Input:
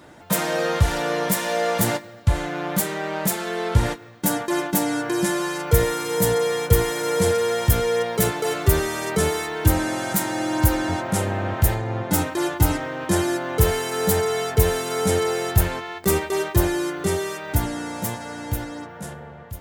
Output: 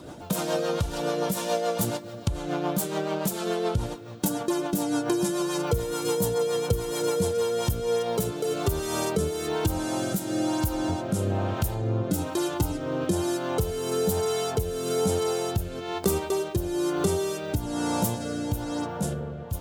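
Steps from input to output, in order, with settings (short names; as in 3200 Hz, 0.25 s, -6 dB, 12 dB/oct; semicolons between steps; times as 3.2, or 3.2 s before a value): bell 1900 Hz -13 dB 0.63 oct; compressor 10:1, threshold -29 dBFS, peak gain reduction 19 dB; rotary speaker horn 7 Hz, later 1.1 Hz, at 7.13; gain +8 dB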